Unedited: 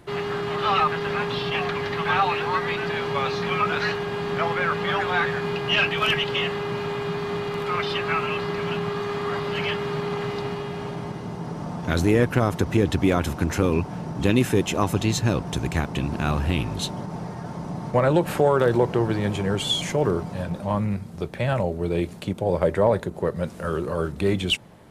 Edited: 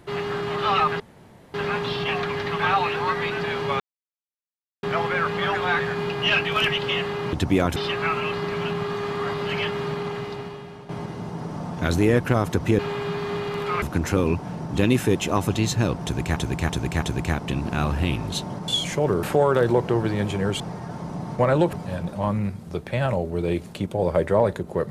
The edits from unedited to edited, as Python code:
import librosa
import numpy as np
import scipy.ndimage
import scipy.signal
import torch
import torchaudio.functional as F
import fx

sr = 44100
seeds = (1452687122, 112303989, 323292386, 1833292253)

y = fx.edit(x, sr, fx.insert_room_tone(at_s=1.0, length_s=0.54),
    fx.silence(start_s=3.26, length_s=1.03),
    fx.swap(start_s=6.79, length_s=1.03, other_s=12.85, other_length_s=0.43),
    fx.fade_out_to(start_s=9.88, length_s=1.07, floor_db=-12.0),
    fx.repeat(start_s=15.49, length_s=0.33, count=4),
    fx.swap(start_s=17.15, length_s=1.13, other_s=19.65, other_length_s=0.55), tone=tone)